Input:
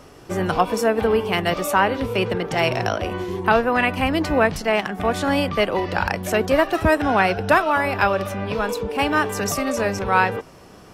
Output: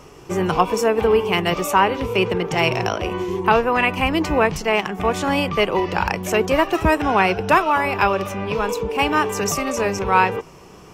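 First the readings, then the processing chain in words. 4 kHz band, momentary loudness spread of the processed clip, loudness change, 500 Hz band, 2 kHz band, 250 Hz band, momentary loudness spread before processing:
+2.0 dB, 6 LU, +1.5 dB, +1.0 dB, 0.0 dB, +0.5 dB, 6 LU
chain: rippled EQ curve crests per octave 0.74, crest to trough 6 dB; trim +1 dB

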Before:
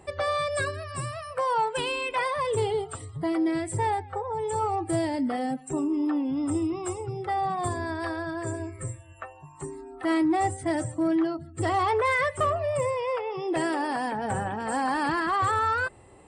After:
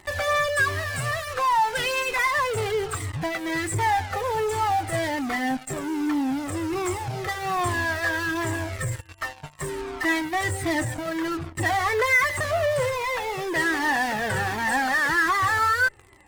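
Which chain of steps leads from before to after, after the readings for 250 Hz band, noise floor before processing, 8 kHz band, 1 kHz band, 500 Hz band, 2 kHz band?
-1.5 dB, -49 dBFS, +6.0 dB, +2.5 dB, +1.0 dB, +9.5 dB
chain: peaking EQ 1.9 kHz +12.5 dB 0.62 oct; in parallel at -12 dB: fuzz box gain 48 dB, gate -43 dBFS; on the sum: Shepard-style flanger falling 1.3 Hz

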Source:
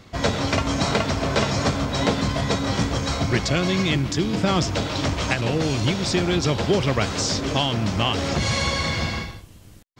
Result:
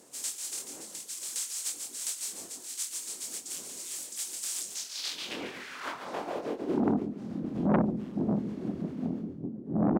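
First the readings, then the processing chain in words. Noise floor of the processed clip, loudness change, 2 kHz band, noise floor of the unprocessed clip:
-46 dBFS, -11.0 dB, -18.5 dB, -46 dBFS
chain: spectral contrast reduction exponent 0.17; wind noise 390 Hz -17 dBFS; reverb removal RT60 0.94 s; peaking EQ 290 Hz +11 dB 1.9 oct; compression 2:1, threshold -17 dBFS, peak gain reduction 12 dB; band-pass sweep 8 kHz -> 200 Hz, 4.64–7.07 s; doubling 24 ms -5 dB; feedback delay 142 ms, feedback 29%, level -10 dB; transformer saturation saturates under 810 Hz; trim -4.5 dB

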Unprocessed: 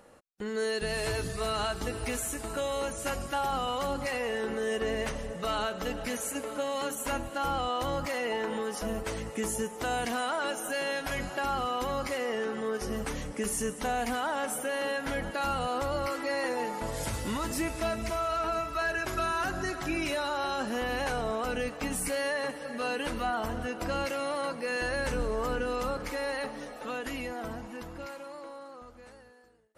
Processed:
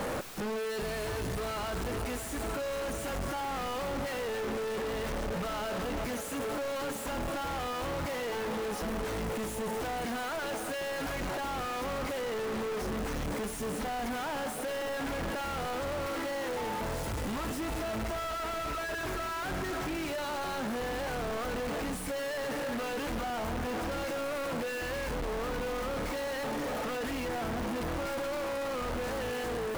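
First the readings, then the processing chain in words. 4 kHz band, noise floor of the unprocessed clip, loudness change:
-2.5 dB, -46 dBFS, -2.5 dB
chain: one-bit comparator; treble shelf 2.5 kHz -10 dB

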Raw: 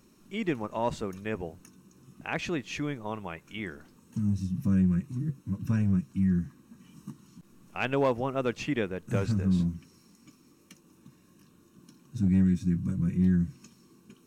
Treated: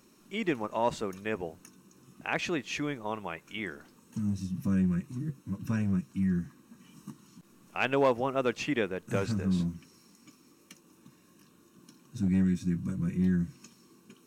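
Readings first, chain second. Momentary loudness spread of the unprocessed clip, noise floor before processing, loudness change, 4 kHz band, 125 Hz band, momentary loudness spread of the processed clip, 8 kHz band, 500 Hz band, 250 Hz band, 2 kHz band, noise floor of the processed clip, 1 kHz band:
15 LU, -61 dBFS, -2.0 dB, +2.0 dB, -4.0 dB, 14 LU, no reading, +1.0 dB, -2.5 dB, +2.0 dB, -62 dBFS, +1.5 dB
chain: bass shelf 160 Hz -11 dB; trim +2 dB

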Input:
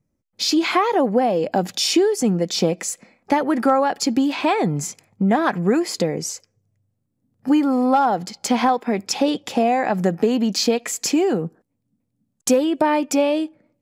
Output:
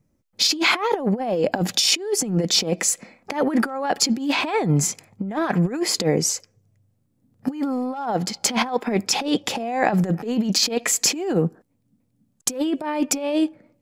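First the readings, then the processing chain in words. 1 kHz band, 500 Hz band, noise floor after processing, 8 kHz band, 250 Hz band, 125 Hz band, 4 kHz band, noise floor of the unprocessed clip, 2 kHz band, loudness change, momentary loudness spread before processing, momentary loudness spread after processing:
-6.0 dB, -4.5 dB, -68 dBFS, +4.5 dB, -3.5 dB, +2.5 dB, +3.5 dB, -74 dBFS, +1.5 dB, -2.0 dB, 8 LU, 7 LU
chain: compressor with a negative ratio -22 dBFS, ratio -0.5; trim +1.5 dB

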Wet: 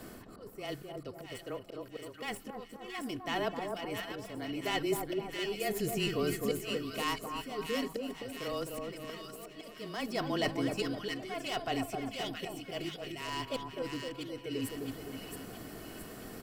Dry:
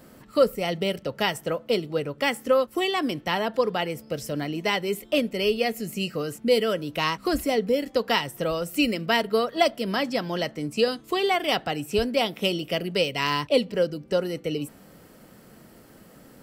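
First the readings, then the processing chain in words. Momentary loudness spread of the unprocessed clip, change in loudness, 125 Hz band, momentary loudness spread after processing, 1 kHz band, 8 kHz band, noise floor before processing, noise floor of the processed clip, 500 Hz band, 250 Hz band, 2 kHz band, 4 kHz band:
7 LU, -11.5 dB, -8.5 dB, 13 LU, -11.0 dB, -5.0 dB, -51 dBFS, -51 dBFS, -13.0 dB, -9.5 dB, -11.0 dB, -11.0 dB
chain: tracing distortion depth 0.056 ms; comb 2.7 ms, depth 41%; reverse; compression 4:1, threshold -33 dBFS, peak gain reduction 17 dB; reverse; slow attack 753 ms; on a send: two-band feedback delay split 1.3 kHz, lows 258 ms, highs 671 ms, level -4 dB; on the sum: frequency shift -22 Hz; trim +3 dB

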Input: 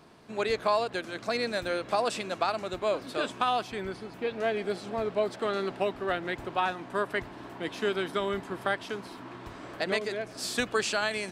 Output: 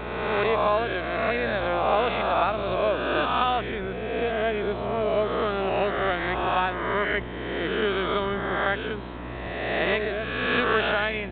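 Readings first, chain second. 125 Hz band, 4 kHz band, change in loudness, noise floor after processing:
+9.5 dB, +3.5 dB, +5.5 dB, -34 dBFS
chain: reverse spectral sustain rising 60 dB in 1.72 s; mains buzz 60 Hz, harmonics 12, -40 dBFS -4 dB/octave; resampled via 8 kHz; trim +1.5 dB

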